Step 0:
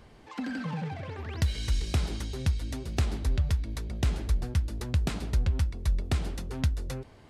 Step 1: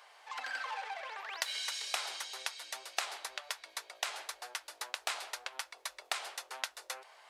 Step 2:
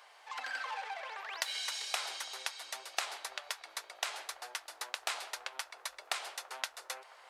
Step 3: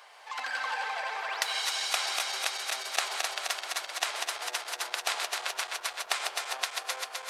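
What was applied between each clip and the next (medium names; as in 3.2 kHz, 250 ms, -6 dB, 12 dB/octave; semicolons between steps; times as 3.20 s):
inverse Chebyshev high-pass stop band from 210 Hz, stop band 60 dB; trim +3 dB
feedback echo behind a band-pass 334 ms, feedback 82%, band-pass 770 Hz, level -18 dB
backward echo that repeats 129 ms, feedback 84%, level -5 dB; trim +5 dB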